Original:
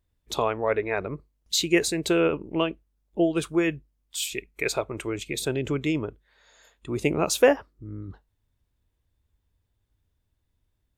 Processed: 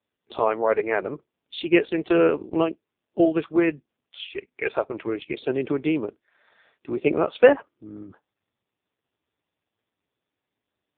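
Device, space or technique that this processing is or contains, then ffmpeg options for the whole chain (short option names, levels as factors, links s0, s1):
telephone: -filter_complex "[0:a]asettb=1/sr,asplit=3[s0][s1][s2];[s0]atrim=end=3.654[s3];[s1]atrim=start=3.65:end=4.64,asetpts=PTS-STARTPTS,afade=t=in:d=0.004:c=qsin,afade=t=out:st=0.986:d=0.004:c=qsin,highshelf=f=4100:g=-6[s4];[s2]atrim=start=4.636[s5];[s3][s4]acrossfade=d=0.004:c1=hsin:c2=qsin[s6];[s6][s5]acrossfade=d=0.004:c1=qsin:c2=hsin,highpass=260,lowpass=3200,volume=1.78" -ar 8000 -c:a libopencore_amrnb -b:a 4750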